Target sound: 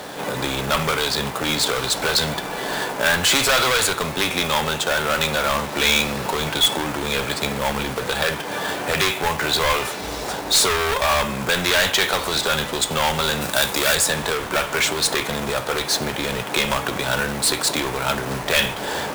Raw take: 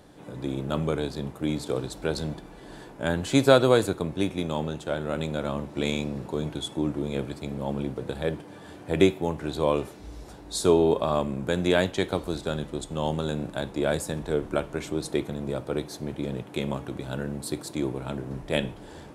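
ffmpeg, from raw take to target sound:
ffmpeg -i in.wav -filter_complex "[0:a]asplit=2[link_01][link_02];[link_02]highpass=frequency=720:poles=1,volume=33dB,asoftclip=type=tanh:threshold=-2dB[link_03];[link_01][link_03]amix=inputs=2:normalize=0,lowpass=frequency=5600:poles=1,volume=-6dB,equalizer=frequency=320:width=6:gain=-9.5,acrossover=split=100|1000[link_04][link_05][link_06];[link_05]acompressor=threshold=-23dB:ratio=12[link_07];[link_04][link_07][link_06]amix=inputs=3:normalize=0,acrusher=bits=2:mode=log:mix=0:aa=0.000001,asettb=1/sr,asplit=3[link_08][link_09][link_10];[link_08]atrim=end=13.414[link_11];[link_09]atrim=start=13.41:end=13.95,asetpts=PTS-STARTPTS,afade=type=in:duration=0.004:curve=qsin,afade=type=out:start_time=0.536:duration=0.004:curve=qsin,aemphasis=mode=production:type=cd[link_12];[link_10]atrim=start=13.946[link_13];[link_11][link_12]acrossfade=duration=0.004:curve1=hsin:curve2=qsin[link_14];[link_14][link_13]acrossfade=duration=0.004:curve1=qsin:curve2=hsin,volume=-2dB" out.wav

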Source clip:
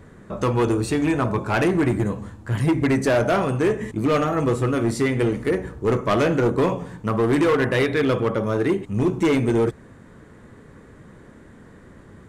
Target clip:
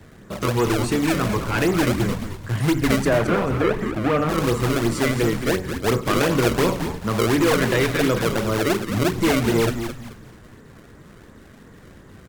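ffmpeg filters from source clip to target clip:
ffmpeg -i in.wav -filter_complex "[0:a]acrossover=split=140|860|1500[link_01][link_02][link_03][link_04];[link_02]acrusher=samples=29:mix=1:aa=0.000001:lfo=1:lforange=46.4:lforate=2.8[link_05];[link_01][link_05][link_03][link_04]amix=inputs=4:normalize=0,asettb=1/sr,asplit=3[link_06][link_07][link_08];[link_06]atrim=end=3.054[link_09];[link_07]atrim=start=3.05:end=4.29,asetpts=PTS-STARTPTS,afade=type=in:duration=0.004:curve=qsin,afade=type=out:start_time=1.236:duration=0.004:curve=qsin,acrossover=split=2800[link_10][link_11];[link_11]acompressor=threshold=-46dB:ratio=4:attack=1:release=60[link_12];[link_10][link_12]amix=inputs=2:normalize=0[link_13];[link_08]atrim=start=4.286[link_14];[link_09][link_13]acrossfade=duration=0.004:curve1=hsin:curve2=qsin[link_15];[link_15][link_14]acrossfade=duration=0.004:curve1=qsin:curve2=hsin,asplit=5[link_16][link_17][link_18][link_19][link_20];[link_17]adelay=218,afreqshift=-110,volume=-8dB[link_21];[link_18]adelay=436,afreqshift=-220,volume=-17.6dB[link_22];[link_19]adelay=654,afreqshift=-330,volume=-27.3dB[link_23];[link_20]adelay=872,afreqshift=-440,volume=-36.9dB[link_24];[link_16][link_21][link_22][link_23][link_24]amix=inputs=5:normalize=0" -ar 48000 -c:a libopus -b:a 256k out.opus

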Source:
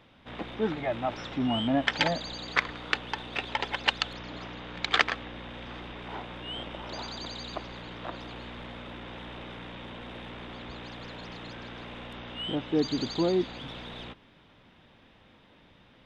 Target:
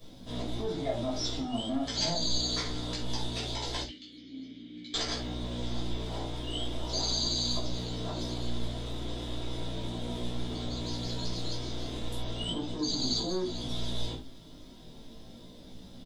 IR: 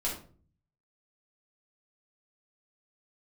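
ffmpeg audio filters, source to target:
-filter_complex "[0:a]firequalizer=gain_entry='entry(300,0);entry(1200,-14);entry(6000,-10)':delay=0.05:min_phase=1,asplit=2[link_01][link_02];[link_02]acompressor=threshold=-43dB:ratio=6,volume=2.5dB[link_03];[link_01][link_03]amix=inputs=2:normalize=0,alimiter=level_in=1dB:limit=-24dB:level=0:latency=1:release=55,volume=-1dB,flanger=delay=16:depth=3.3:speed=0.38,asettb=1/sr,asplit=3[link_04][link_05][link_06];[link_04]atrim=end=3.824[link_07];[link_05]atrim=start=3.82:end=4.94,asetpts=PTS-STARTPTS,afade=type=in:duration=0.004:curve=qsin,afade=type=out:start_time=1.116:duration=0.004:curve=qsin,asplit=3[link_08][link_09][link_10];[link_08]bandpass=frequency=270:width_type=q:width=8,volume=0dB[link_11];[link_09]bandpass=frequency=2290:width_type=q:width=8,volume=-6dB[link_12];[link_10]bandpass=frequency=3010:width_type=q:width=8,volume=-9dB[link_13];[link_11][link_12][link_13]amix=inputs=3:normalize=0[link_14];[link_06]atrim=start=4.936[link_15];[link_07][link_14]acrossfade=duration=0.004:curve1=hsin:curve2=qsin[link_16];[link_16][link_15]acrossfade=duration=0.004:curve1=qsin:curve2=hsin,acrossover=split=690[link_17][link_18];[link_17]asoftclip=type=tanh:threshold=-36dB[link_19];[link_18]aexciter=amount=10.4:drive=4.7:freq=3800[link_20];[link_19][link_20]amix=inputs=2:normalize=0[link_21];[1:a]atrim=start_sample=2205,afade=type=out:start_time=0.14:duration=0.01,atrim=end_sample=6615[link_22];[link_21][link_22]afir=irnorm=-1:irlink=0"

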